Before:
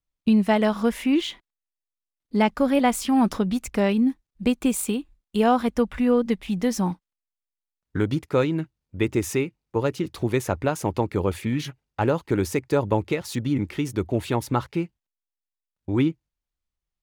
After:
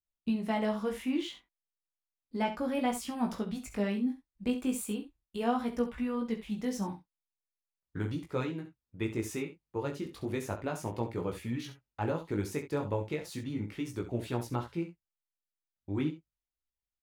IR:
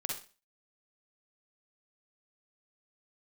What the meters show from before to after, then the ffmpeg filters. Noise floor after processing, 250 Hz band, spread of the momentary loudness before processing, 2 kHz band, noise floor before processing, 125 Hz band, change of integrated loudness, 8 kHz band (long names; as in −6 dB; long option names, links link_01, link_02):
below −85 dBFS, −10.5 dB, 8 LU, −10.5 dB, below −85 dBFS, −10.0 dB, −11.0 dB, −11.0 dB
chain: -filter_complex "[0:a]flanger=delay=16.5:depth=3.9:speed=0.35,asplit=2[link_01][link_02];[link_02]aecho=0:1:39|67:0.188|0.266[link_03];[link_01][link_03]amix=inputs=2:normalize=0,volume=-8dB"